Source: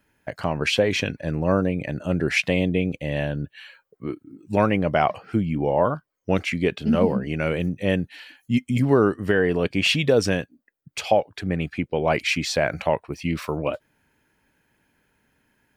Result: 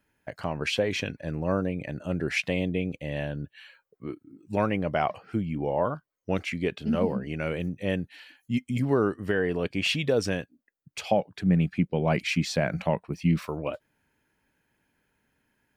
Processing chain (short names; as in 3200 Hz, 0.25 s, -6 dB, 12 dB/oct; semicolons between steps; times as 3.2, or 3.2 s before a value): 11.11–13.46 bell 180 Hz +12 dB 0.81 oct; gain -6 dB